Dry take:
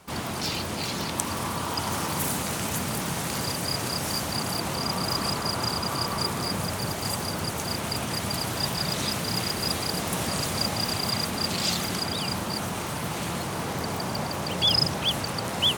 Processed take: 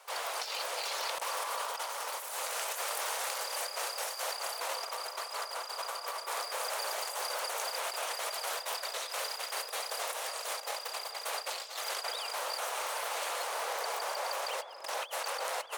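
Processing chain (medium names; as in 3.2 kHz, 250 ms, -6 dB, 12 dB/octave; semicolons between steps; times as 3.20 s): elliptic high-pass 500 Hz, stop band 60 dB; compressor with a negative ratio -33 dBFS, ratio -0.5; tape echo 433 ms, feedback 47%, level -10.5 dB, low-pass 1.3 kHz; trim -4 dB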